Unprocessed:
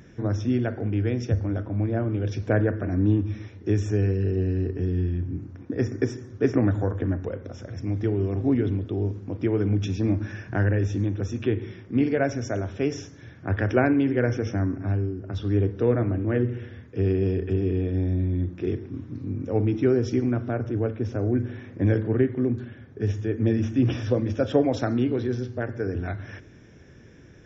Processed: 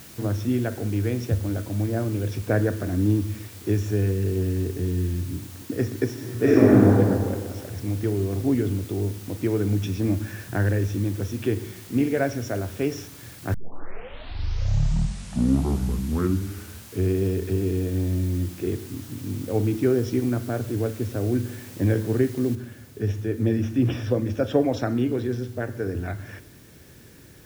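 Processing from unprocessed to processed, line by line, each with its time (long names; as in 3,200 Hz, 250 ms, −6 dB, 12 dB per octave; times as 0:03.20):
0:06.13–0:06.88: thrown reverb, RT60 1.8 s, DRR −7.5 dB
0:13.54: tape start 3.62 s
0:22.55: noise floor change −46 dB −55 dB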